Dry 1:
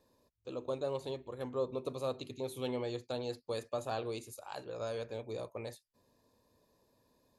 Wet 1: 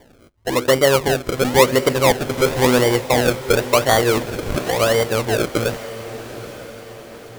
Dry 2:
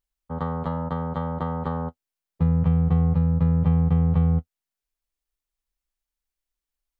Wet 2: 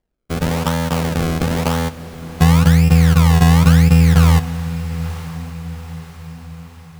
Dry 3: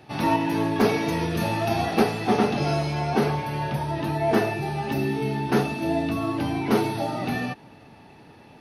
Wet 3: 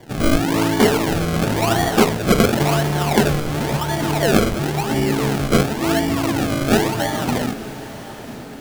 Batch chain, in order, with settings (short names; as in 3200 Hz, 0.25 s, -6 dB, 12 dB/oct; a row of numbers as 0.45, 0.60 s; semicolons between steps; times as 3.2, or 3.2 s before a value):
decimation with a swept rate 33×, swing 100% 0.95 Hz; diffused feedback echo 0.923 s, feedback 50%, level -14 dB; normalise peaks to -1.5 dBFS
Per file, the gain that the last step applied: +22.0, +9.0, +6.0 dB